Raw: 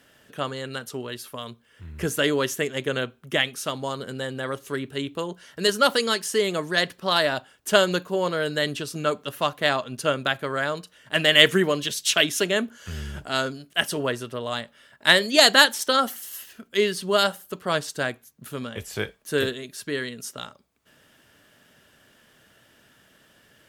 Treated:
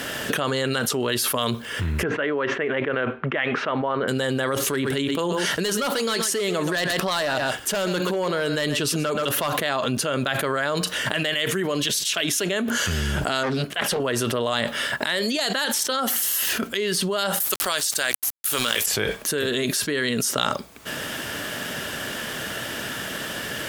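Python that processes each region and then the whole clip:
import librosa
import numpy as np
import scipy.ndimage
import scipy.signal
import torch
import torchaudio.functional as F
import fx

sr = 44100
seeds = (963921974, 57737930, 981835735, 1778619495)

y = fx.chain(x, sr, fx.lowpass(hz=2200.0, slope=24),
    fx.low_shelf(hz=250.0, db=-11.0), at=(2.03, 4.08))
y = fx.chain(y, sr, fx.overload_stage(gain_db=18.0),
    fx.echo_single(ms=127, db=-15.0), at=(4.7, 9.51))
y = fx.chain(y, sr, fx.bass_treble(bass_db=-2, treble_db=-9),
    fx.notch(hz=290.0, q=7.6),
    fx.doppler_dist(depth_ms=0.51), at=(13.43, 14.0))
y = fx.chain(y, sr, fx.tilt_eq(slope=4.5),
    fx.sample_gate(floor_db=-38.5), at=(17.4, 18.86))
y = fx.low_shelf(y, sr, hz=130.0, db=-6.0)
y = fx.env_flatten(y, sr, amount_pct=100)
y = y * librosa.db_to_amplitude(-12.5)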